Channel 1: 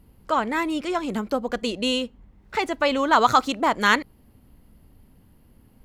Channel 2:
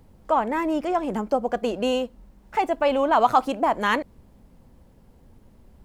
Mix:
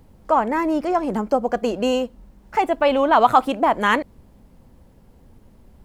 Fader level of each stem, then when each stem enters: -13.0 dB, +2.5 dB; 0.00 s, 0.00 s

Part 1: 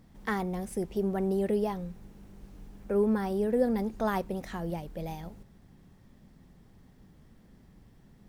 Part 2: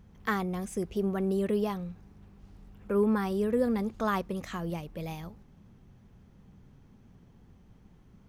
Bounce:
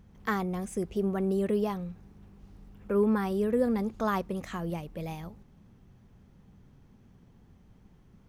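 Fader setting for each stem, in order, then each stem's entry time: -14.5 dB, -1.0 dB; 0.00 s, 0.00 s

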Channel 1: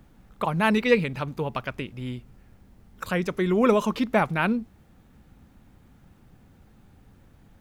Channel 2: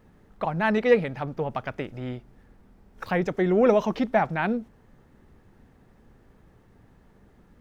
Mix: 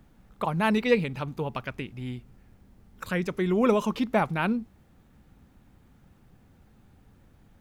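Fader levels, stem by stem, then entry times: -3.0 dB, -16.5 dB; 0.00 s, 0.00 s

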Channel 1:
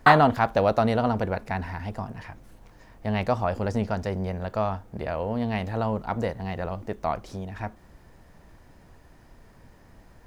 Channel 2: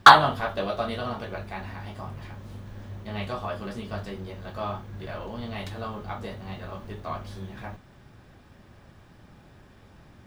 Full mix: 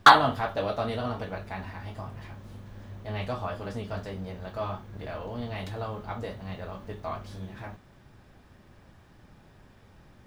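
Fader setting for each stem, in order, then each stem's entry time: -10.5 dB, -3.5 dB; 0.00 s, 0.00 s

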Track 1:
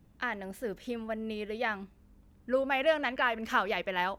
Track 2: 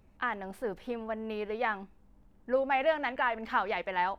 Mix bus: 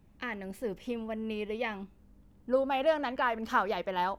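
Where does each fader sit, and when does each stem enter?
-3.0 dB, -4.0 dB; 0.00 s, 0.00 s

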